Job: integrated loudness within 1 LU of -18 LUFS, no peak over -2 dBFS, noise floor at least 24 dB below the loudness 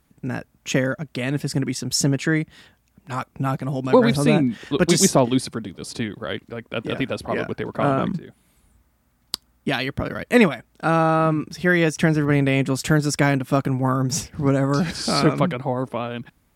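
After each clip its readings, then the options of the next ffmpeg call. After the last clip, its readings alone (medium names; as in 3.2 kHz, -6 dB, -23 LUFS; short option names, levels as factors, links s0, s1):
loudness -21.5 LUFS; peak level -1.0 dBFS; loudness target -18.0 LUFS
-> -af "volume=1.5,alimiter=limit=0.794:level=0:latency=1"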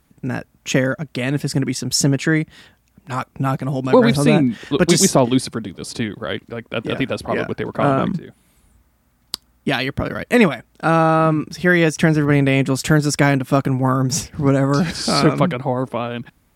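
loudness -18.5 LUFS; peak level -2.0 dBFS; noise floor -61 dBFS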